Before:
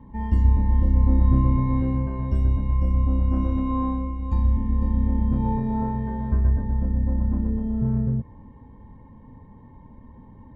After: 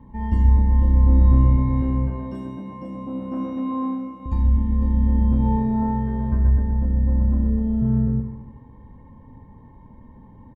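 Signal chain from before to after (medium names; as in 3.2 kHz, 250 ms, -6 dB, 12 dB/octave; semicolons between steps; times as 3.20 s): 2.10–4.26 s: high-pass 180 Hz 24 dB/octave; feedback delay 77 ms, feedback 56%, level -9 dB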